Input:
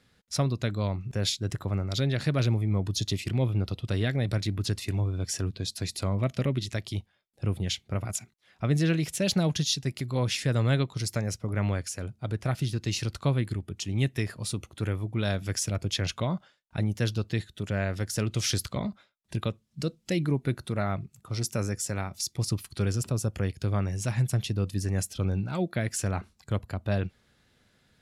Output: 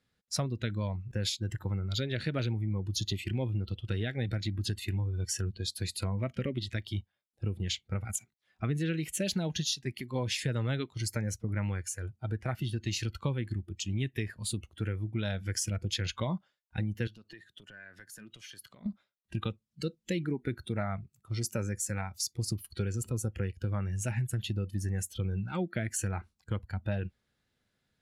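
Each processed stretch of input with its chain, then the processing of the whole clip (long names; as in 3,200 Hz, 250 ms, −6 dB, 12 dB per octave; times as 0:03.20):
0:17.07–0:18.86: high-pass filter 150 Hz + dynamic equaliser 1,600 Hz, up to +5 dB, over −48 dBFS, Q 1.5 + downward compressor 8 to 1, threshold −39 dBFS
whole clip: noise reduction from a noise print of the clip's start 13 dB; downward compressor, threshold −28 dBFS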